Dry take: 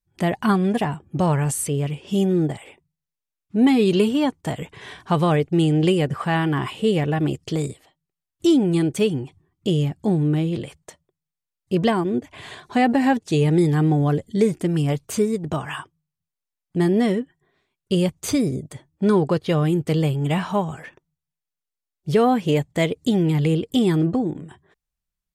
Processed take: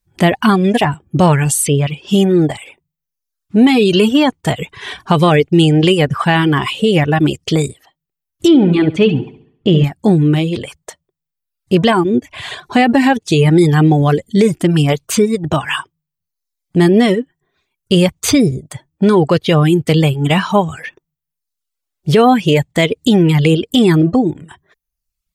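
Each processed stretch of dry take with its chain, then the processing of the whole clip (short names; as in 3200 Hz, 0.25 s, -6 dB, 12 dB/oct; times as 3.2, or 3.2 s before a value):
8.48–9.84 LPF 2700 Hz + flutter echo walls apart 11.8 m, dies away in 0.62 s
whole clip: reverb removal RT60 0.78 s; dynamic EQ 3000 Hz, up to +5 dB, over -45 dBFS, Q 1; maximiser +11.5 dB; gain -1 dB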